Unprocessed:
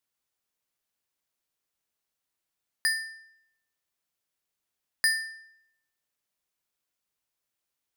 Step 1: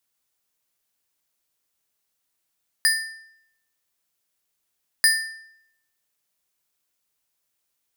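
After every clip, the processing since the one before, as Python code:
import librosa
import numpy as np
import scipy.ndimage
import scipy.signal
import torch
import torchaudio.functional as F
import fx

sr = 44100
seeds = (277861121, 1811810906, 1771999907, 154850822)

y = fx.high_shelf(x, sr, hz=5100.0, db=5.5)
y = F.gain(torch.from_numpy(y), 4.0).numpy()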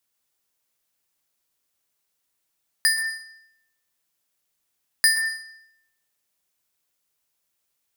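y = fx.rev_plate(x, sr, seeds[0], rt60_s=0.68, hf_ratio=0.7, predelay_ms=110, drr_db=7.0)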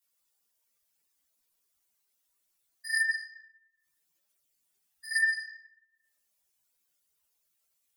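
y = fx.spec_expand(x, sr, power=2.1)
y = fx.over_compress(y, sr, threshold_db=-25.0, ratio=-0.5)
y = fx.chorus_voices(y, sr, voices=4, hz=0.87, base_ms=15, depth_ms=2.8, mix_pct=60)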